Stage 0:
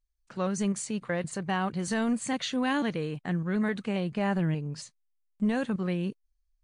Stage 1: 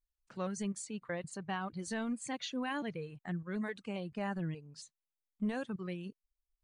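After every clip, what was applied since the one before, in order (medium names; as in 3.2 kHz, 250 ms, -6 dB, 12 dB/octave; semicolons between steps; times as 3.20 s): reverb removal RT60 1.7 s; trim -7.5 dB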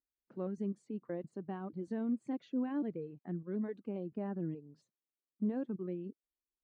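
band-pass filter 310 Hz, Q 2; trim +6 dB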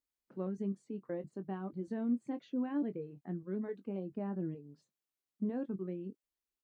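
doubling 21 ms -10.5 dB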